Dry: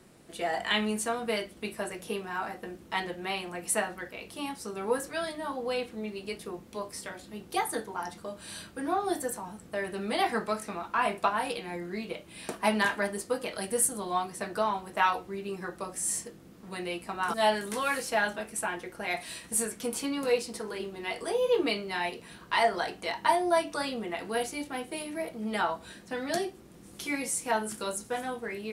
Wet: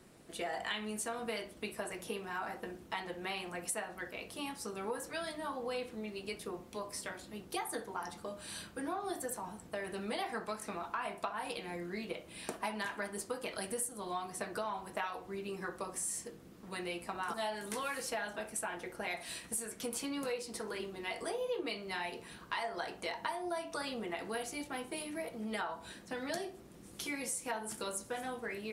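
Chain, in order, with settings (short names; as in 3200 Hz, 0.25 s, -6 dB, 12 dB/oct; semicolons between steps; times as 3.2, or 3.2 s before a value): harmonic-percussive split harmonic -4 dB; compressor 6:1, threshold -34 dBFS, peak gain reduction 12 dB; narrowing echo 64 ms, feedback 41%, band-pass 740 Hz, level -11 dB; gain -1 dB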